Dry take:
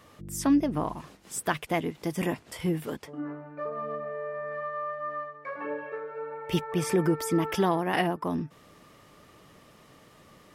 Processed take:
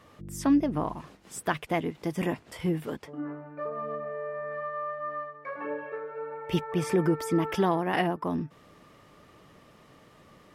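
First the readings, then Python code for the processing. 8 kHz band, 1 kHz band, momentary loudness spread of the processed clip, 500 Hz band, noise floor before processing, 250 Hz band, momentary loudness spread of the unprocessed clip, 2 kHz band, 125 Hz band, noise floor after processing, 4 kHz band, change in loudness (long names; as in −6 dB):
−5.5 dB, −0.5 dB, 12 LU, 0.0 dB, −56 dBFS, 0.0 dB, 12 LU, −1.0 dB, 0.0 dB, −57 dBFS, −2.5 dB, 0.0 dB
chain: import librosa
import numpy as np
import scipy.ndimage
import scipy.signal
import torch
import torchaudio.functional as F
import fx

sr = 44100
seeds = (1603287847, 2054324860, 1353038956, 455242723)

y = fx.high_shelf(x, sr, hz=4700.0, db=-7.0)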